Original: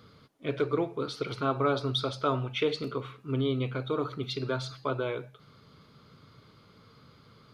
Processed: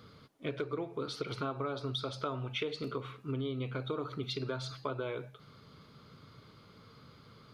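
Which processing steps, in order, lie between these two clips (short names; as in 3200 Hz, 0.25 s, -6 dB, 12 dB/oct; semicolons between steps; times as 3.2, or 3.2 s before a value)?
compressor 6:1, threshold -33 dBFS, peak gain reduction 11.5 dB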